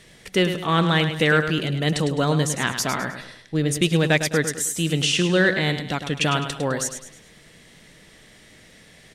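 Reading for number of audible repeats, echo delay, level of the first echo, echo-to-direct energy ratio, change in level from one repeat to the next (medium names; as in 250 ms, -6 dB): 4, 104 ms, -9.0 dB, -8.5 dB, -8.0 dB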